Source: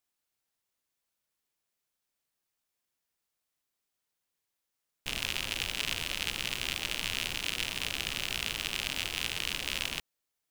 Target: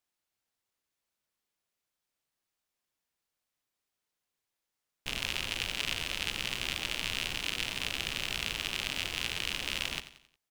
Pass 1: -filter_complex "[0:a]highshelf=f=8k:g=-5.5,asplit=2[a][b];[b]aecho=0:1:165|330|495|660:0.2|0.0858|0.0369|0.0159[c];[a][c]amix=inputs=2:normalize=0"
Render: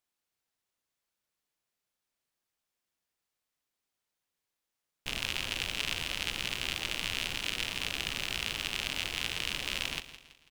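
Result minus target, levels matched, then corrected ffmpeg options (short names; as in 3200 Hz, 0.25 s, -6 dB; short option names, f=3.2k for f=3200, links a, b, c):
echo 75 ms late
-filter_complex "[0:a]highshelf=f=8k:g=-5.5,asplit=2[a][b];[b]aecho=0:1:90|180|270|360:0.2|0.0858|0.0369|0.0159[c];[a][c]amix=inputs=2:normalize=0"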